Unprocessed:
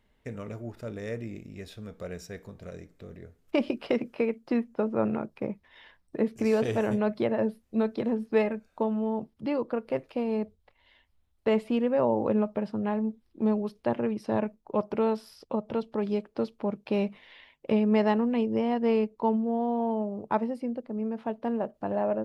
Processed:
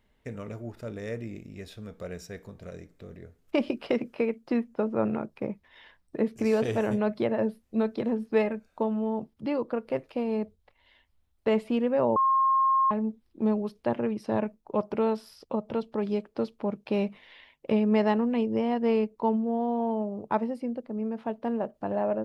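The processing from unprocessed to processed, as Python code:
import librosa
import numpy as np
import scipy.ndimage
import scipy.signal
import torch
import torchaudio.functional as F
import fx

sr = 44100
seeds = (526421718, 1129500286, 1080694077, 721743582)

y = fx.edit(x, sr, fx.bleep(start_s=12.16, length_s=0.75, hz=1070.0, db=-19.5), tone=tone)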